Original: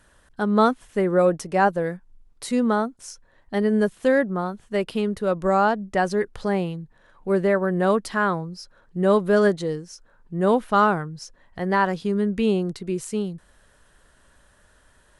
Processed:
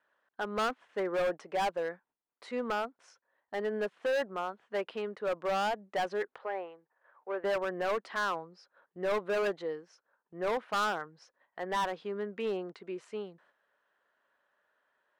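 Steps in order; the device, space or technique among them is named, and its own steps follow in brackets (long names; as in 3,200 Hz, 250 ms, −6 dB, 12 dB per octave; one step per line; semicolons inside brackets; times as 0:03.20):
walkie-talkie (band-pass filter 530–2,300 Hz; hard clipping −23 dBFS, distortion −6 dB; noise gate −60 dBFS, range −9 dB)
0:06.38–0:07.44: three-way crossover with the lows and the highs turned down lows −19 dB, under 370 Hz, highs −21 dB, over 2,500 Hz
level −4 dB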